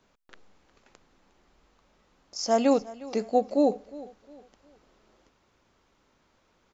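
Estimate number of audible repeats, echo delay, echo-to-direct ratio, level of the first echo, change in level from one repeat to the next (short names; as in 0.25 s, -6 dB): 2, 0.358 s, -18.5 dB, -19.0 dB, -9.5 dB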